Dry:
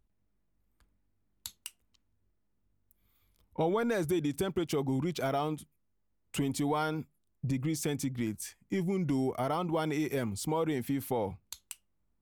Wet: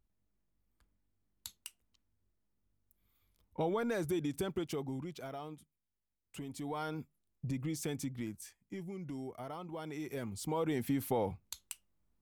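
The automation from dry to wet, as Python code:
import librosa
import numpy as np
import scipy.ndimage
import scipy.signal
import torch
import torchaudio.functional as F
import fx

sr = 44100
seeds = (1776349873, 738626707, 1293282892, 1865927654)

y = fx.gain(x, sr, db=fx.line((4.54, -4.5), (5.26, -13.0), (6.46, -13.0), (6.97, -5.5), (8.05, -5.5), (8.85, -12.5), (9.76, -12.5), (10.85, -1.0)))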